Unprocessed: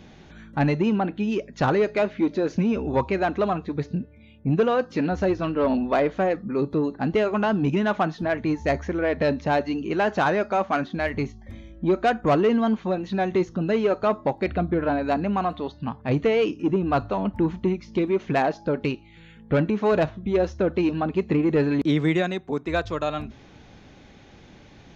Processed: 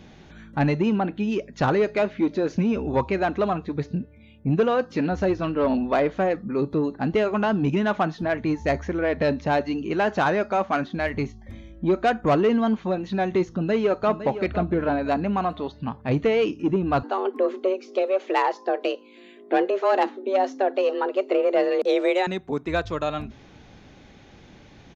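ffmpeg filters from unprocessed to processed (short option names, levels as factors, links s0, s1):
-filter_complex "[0:a]asplit=2[s0][s1];[s1]afade=t=in:st=13.51:d=0.01,afade=t=out:st=14.19:d=0.01,aecho=0:1:510|1020|1530|2040:0.266073|0.0931254|0.0325939|0.0114079[s2];[s0][s2]amix=inputs=2:normalize=0,asettb=1/sr,asplit=3[s3][s4][s5];[s3]atrim=end=17.034[s6];[s4]atrim=start=17.03:end=22.27,asetpts=PTS-STARTPTS,afade=t=in:d=0.004:c=qsin,afade=t=out:st=5.236:d=0.004:c=qsin,afreqshift=190[s7];[s5]atrim=start=22.266[s8];[s6][s7]acrossfade=d=0.004:c1=hsin:c2=qsin[s9];[s9][s8]acrossfade=d=0.004:c1=qsin:c2=hsin"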